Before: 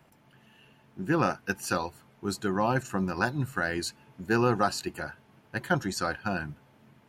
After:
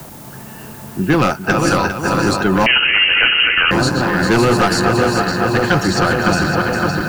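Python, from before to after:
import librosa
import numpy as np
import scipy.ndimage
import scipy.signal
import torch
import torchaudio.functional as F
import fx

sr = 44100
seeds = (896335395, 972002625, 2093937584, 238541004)

p1 = fx.reverse_delay_fb(x, sr, ms=280, feedback_pct=84, wet_db=-6.5)
p2 = fx.env_lowpass(p1, sr, base_hz=1500.0, full_db=-21.0)
p3 = fx.dmg_noise_colour(p2, sr, seeds[0], colour='blue', level_db=-61.0)
p4 = fx.fold_sine(p3, sr, drive_db=10, ceiling_db=-10.0)
p5 = p3 + F.gain(torch.from_numpy(p4), -8.0).numpy()
p6 = fx.low_shelf(p5, sr, hz=64.0, db=7.0)
p7 = p6 + fx.echo_single(p6, sr, ms=401, db=-9.0, dry=0)
p8 = fx.freq_invert(p7, sr, carrier_hz=3000, at=(2.66, 3.71))
p9 = fx.band_squash(p8, sr, depth_pct=40)
y = F.gain(torch.from_numpy(p9), 4.5).numpy()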